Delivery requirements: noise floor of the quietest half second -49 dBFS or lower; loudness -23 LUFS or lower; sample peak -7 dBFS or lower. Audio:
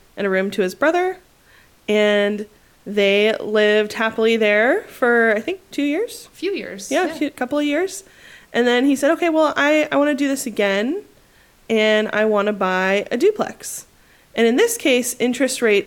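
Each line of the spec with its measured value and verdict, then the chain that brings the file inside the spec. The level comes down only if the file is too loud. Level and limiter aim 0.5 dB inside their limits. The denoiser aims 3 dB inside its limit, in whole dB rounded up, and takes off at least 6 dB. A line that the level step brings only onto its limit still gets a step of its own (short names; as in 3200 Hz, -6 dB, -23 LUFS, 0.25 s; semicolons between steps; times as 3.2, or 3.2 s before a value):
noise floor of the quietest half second -52 dBFS: OK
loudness -18.5 LUFS: fail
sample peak -5.0 dBFS: fail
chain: gain -5 dB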